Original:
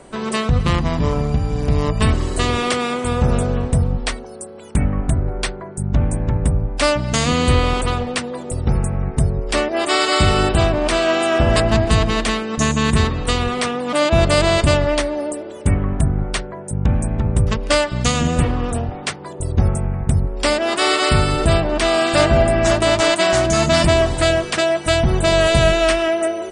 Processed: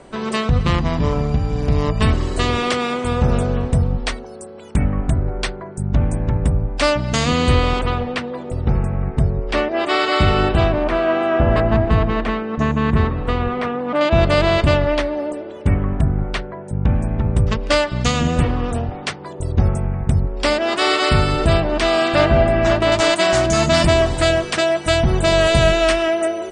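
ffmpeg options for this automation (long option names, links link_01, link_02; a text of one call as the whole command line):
ffmpeg -i in.wav -af "asetnsamples=nb_out_samples=441:pad=0,asendcmd='7.79 lowpass f 3400;10.84 lowpass f 1800;14.01 lowpass f 3700;17.24 lowpass f 6000;22.08 lowpass f 3700;22.92 lowpass f 8700',lowpass=6500" out.wav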